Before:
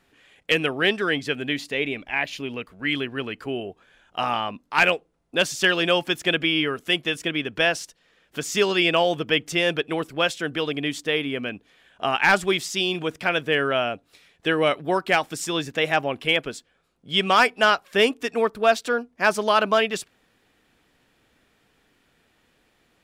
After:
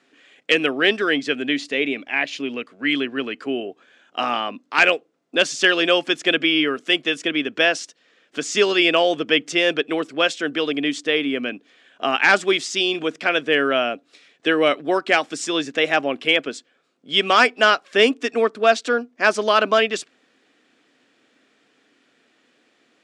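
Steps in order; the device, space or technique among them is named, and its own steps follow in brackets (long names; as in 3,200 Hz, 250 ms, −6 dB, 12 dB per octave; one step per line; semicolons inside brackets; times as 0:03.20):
television speaker (loudspeaker in its box 180–8,000 Hz, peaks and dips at 180 Hz −9 dB, 270 Hz +4 dB, 900 Hz −6 dB)
level +3.5 dB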